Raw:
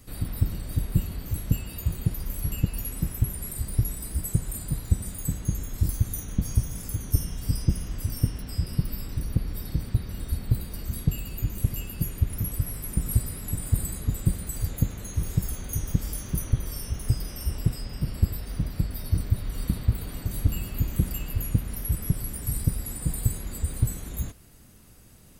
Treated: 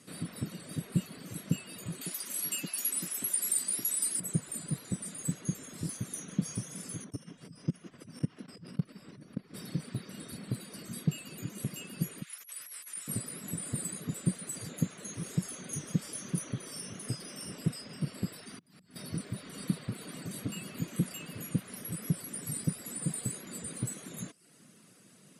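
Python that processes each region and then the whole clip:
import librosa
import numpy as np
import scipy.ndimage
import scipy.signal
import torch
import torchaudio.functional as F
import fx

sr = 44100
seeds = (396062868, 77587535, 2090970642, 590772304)

y = fx.chain(x, sr, fx.bessel_highpass(hz=330.0, order=4),
    fx.high_shelf(hz=3100.0, db=12.0),
    fx.notch(hz=480.0, q=6.0), at=(2.01, 4.2))
y = fx.chain(y, sr, fx.lowpass(hz=2500.0, slope=6),
    fx.level_steps(step_db=19),
    fx.echo_stepped(ms=162, hz=340.0, octaves=0.7, feedback_pct=70, wet_db=-9), at=(7.04, 9.54))
y = fx.chain(y, sr, fx.highpass(hz=1500.0, slope=12),
    fx.over_compress(threshold_db=-39.0, ratio=-0.5), at=(12.22, 13.08))
y = fx.chain(y, sr, fx.peak_eq(hz=540.0, db=-12.5, octaves=0.28),
    fx.auto_swell(attack_ms=491.0), at=(18.41, 18.96))
y = fx.dereverb_blind(y, sr, rt60_s=0.53)
y = scipy.signal.sosfilt(scipy.signal.ellip(3, 1.0, 40, [160.0, 9900.0], 'bandpass', fs=sr, output='sos'), y)
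y = fx.peak_eq(y, sr, hz=840.0, db=-6.5, octaves=0.39)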